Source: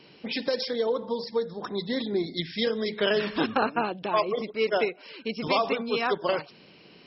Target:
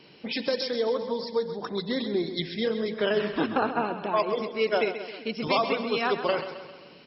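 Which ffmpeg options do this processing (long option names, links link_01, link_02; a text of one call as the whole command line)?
ffmpeg -i in.wav -filter_complex "[0:a]asettb=1/sr,asplit=3[link_01][link_02][link_03];[link_01]atrim=end=2.544[link_04];[link_02]atrim=start=2.54:end=4.2,asetpts=PTS-STARTPTS,afade=type=in:duration=0.004:curve=qsin,afade=type=out:start_time=1.656:duration=0.004:curve=qsin,highshelf=frequency=3000:gain=-10[link_05];[link_03]atrim=start=4.196[link_06];[link_04][link_05]acrossfade=duration=0.004:curve1=hsin:curve2=qsin[link_07];[link_07][link_06]acrossfade=duration=0.004:curve1=qsin:curve2=hsin,aecho=1:1:132|264|396|528|660|792:0.299|0.158|0.0839|0.0444|0.0236|0.0125" out.wav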